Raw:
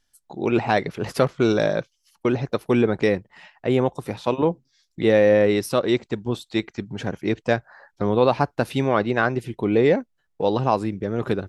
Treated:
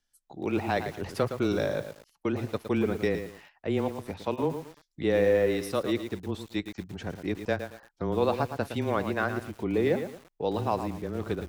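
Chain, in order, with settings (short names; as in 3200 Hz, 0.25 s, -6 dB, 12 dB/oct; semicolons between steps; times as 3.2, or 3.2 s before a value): frequency shift -18 Hz; lo-fi delay 0.113 s, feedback 35%, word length 6-bit, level -8.5 dB; gain -8 dB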